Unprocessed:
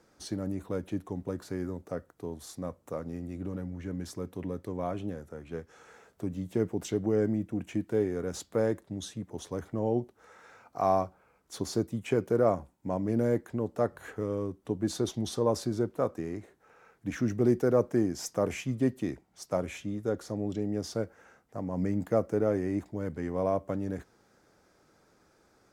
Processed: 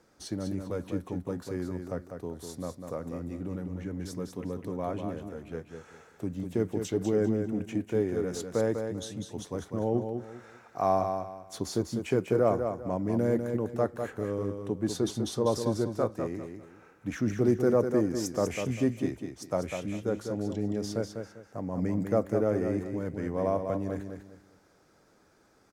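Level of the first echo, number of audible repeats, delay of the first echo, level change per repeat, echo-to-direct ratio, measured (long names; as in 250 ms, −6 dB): −6.5 dB, 3, 198 ms, −11.0 dB, −6.0 dB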